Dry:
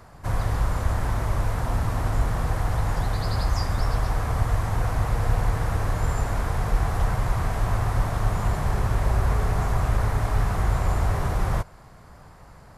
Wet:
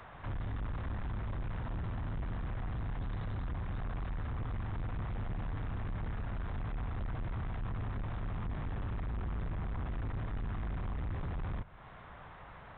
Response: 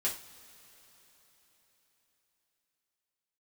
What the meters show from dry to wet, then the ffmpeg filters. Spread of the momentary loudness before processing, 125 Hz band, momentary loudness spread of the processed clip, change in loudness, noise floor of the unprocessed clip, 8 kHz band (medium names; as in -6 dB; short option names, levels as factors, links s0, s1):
2 LU, -13.5 dB, 1 LU, -14.0 dB, -48 dBFS, under -40 dB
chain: -filter_complex "[0:a]tiltshelf=f=720:g=-5,acrossover=split=290[s0][s1];[s1]acompressor=threshold=0.00562:ratio=3[s2];[s0][s2]amix=inputs=2:normalize=0,aresample=8000,asoftclip=type=tanh:threshold=0.0224,aresample=44100,volume=0.891"